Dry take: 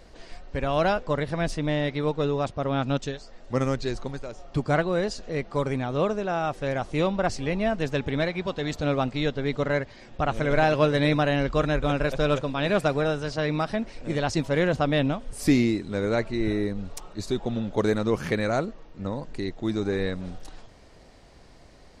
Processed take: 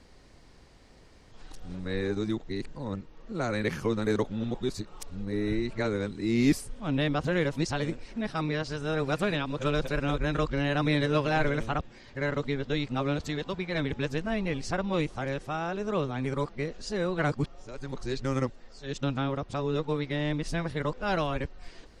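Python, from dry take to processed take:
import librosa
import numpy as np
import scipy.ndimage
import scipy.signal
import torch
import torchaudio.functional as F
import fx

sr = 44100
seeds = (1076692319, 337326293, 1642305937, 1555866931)

y = x[::-1].copy()
y = fx.peak_eq(y, sr, hz=650.0, db=-6.0, octaves=0.51)
y = F.gain(torch.from_numpy(y), -3.0).numpy()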